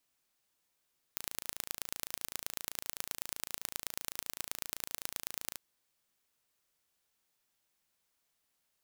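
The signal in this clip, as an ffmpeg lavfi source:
ffmpeg -f lavfi -i "aevalsrc='0.422*eq(mod(n,1586),0)*(0.5+0.5*eq(mod(n,4758),0))':duration=4.39:sample_rate=44100" out.wav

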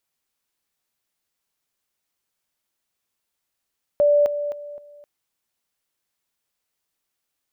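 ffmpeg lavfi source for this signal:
ffmpeg -f lavfi -i "aevalsrc='pow(10,(-13-10*floor(t/0.26))/20)*sin(2*PI*584*t)':duration=1.04:sample_rate=44100" out.wav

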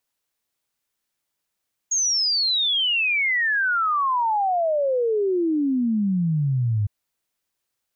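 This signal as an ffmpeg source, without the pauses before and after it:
ffmpeg -f lavfi -i "aevalsrc='0.119*clip(min(t,4.96-t)/0.01,0,1)*sin(2*PI*6700*4.96/log(100/6700)*(exp(log(100/6700)*t/4.96)-1))':duration=4.96:sample_rate=44100" out.wav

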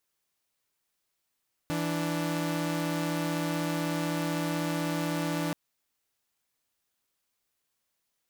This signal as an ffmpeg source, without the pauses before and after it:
ffmpeg -f lavfi -i "aevalsrc='0.0376*((2*mod(164.81*t,1)-1)+(2*mod(293.66*t,1)-1))':duration=3.83:sample_rate=44100" out.wav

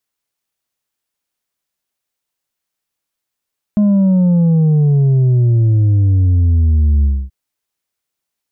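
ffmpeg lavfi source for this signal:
ffmpeg -f lavfi -i "aevalsrc='0.355*clip((3.53-t)/0.26,0,1)*tanh(1.58*sin(2*PI*210*3.53/log(65/210)*(exp(log(65/210)*t/3.53)-1)))/tanh(1.58)':duration=3.53:sample_rate=44100" out.wav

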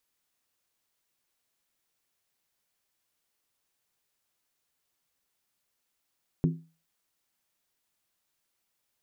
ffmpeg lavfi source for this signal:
ffmpeg -f lavfi -i "aevalsrc='0.119*pow(10,-3*t/0.34)*sin(2*PI*163*t)+0.0596*pow(10,-3*t/0.269)*sin(2*PI*259.8*t)+0.0299*pow(10,-3*t/0.233)*sin(2*PI*348.2*t)+0.015*pow(10,-3*t/0.224)*sin(2*PI*374.2*t)+0.0075*pow(10,-3*t/0.209)*sin(2*PI*432.4*t)':duration=0.63:sample_rate=44100" out.wav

